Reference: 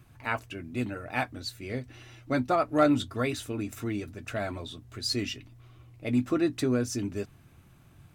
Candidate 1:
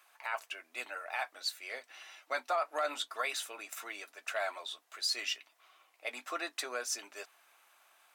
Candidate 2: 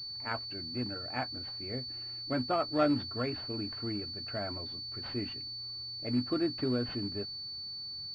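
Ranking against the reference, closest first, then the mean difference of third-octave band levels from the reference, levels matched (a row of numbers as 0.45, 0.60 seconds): 2, 1; 5.5, 13.0 decibels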